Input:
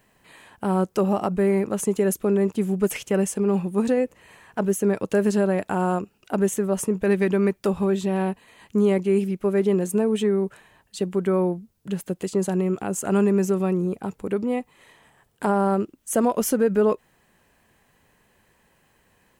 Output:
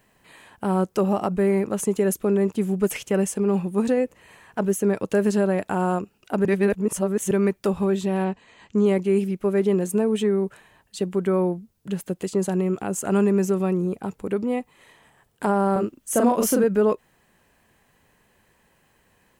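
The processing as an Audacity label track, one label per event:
6.450000	7.310000	reverse
8.240000	8.860000	steep low-pass 7900 Hz 48 dB/oct
15.720000	16.640000	doubler 38 ms -2 dB

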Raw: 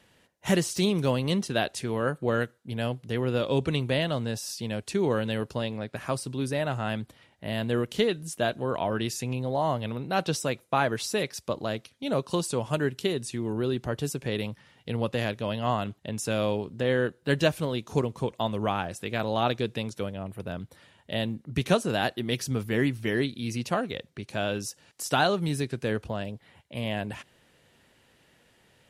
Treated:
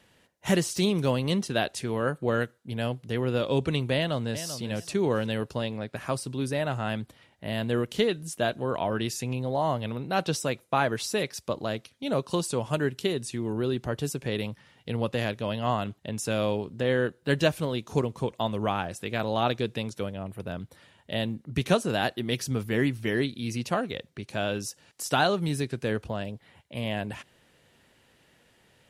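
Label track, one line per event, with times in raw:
3.950000	4.480000	echo throw 0.39 s, feedback 20%, level -11 dB

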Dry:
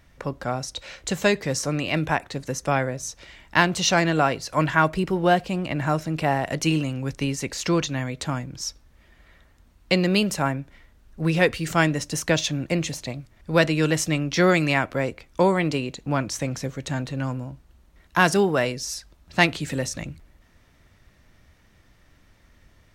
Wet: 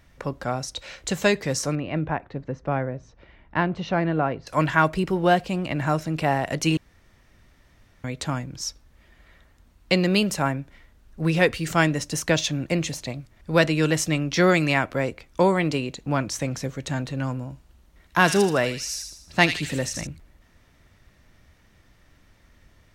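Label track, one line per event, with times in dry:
1.750000	4.470000	tape spacing loss at 10 kHz 44 dB
6.770000	8.040000	room tone
17.420000	20.070000	thin delay 79 ms, feedback 48%, high-pass 2700 Hz, level -4 dB

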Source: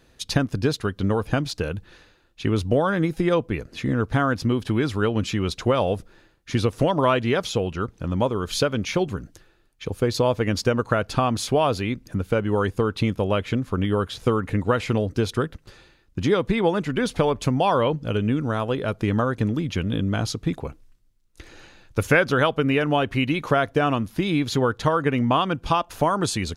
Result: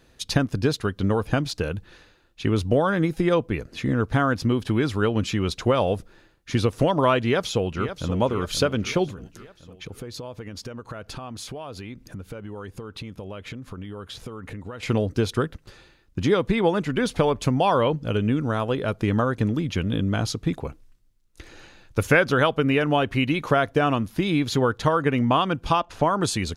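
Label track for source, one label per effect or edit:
7.230000	8.160000	echo throw 0.53 s, feedback 55%, level -10.5 dB
9.100000	14.830000	compressor, threshold -33 dBFS
25.800000	26.210000	air absorption 70 m

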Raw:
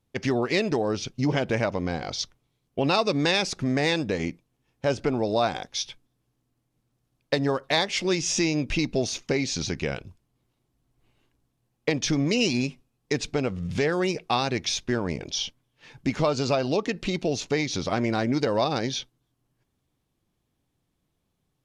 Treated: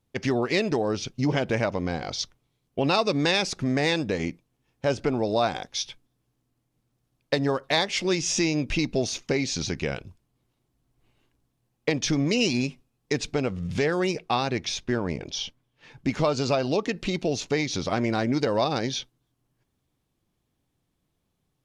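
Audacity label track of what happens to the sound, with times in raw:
14.210000	16.090000	high shelf 4300 Hz -5.5 dB

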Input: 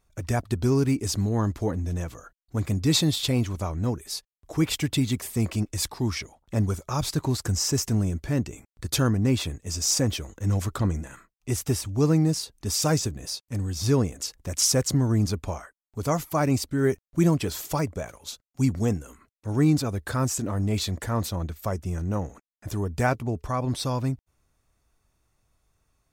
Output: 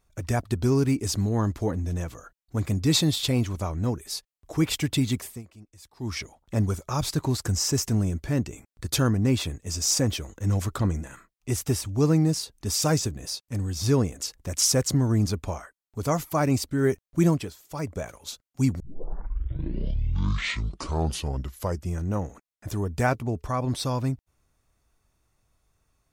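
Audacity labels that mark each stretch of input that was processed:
5.160000	6.200000	dip -22 dB, fades 0.27 s
17.300000	17.940000	dip -18.5 dB, fades 0.26 s
18.800000	18.800000	tape start 3.17 s

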